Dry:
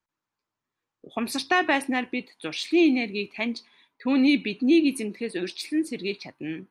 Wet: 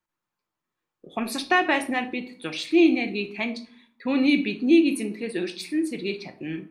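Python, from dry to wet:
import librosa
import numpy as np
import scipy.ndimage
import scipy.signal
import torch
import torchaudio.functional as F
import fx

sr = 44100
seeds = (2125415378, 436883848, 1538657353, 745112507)

y = fx.peak_eq(x, sr, hz=5200.0, db=-2.5, octaves=0.77)
y = fx.room_shoebox(y, sr, seeds[0], volume_m3=510.0, walls='furnished', distance_m=0.92)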